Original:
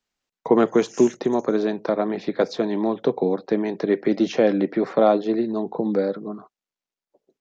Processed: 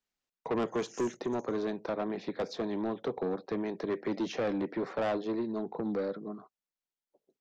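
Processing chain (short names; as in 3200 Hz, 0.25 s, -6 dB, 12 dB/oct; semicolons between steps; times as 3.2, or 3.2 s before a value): soft clip -18 dBFS, distortion -9 dB; gain -8 dB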